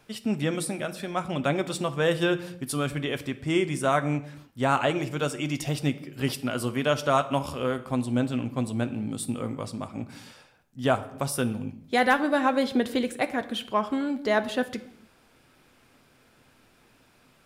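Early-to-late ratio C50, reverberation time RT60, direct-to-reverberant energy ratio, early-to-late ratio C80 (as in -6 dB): 15.0 dB, not exponential, 9.0 dB, 17.5 dB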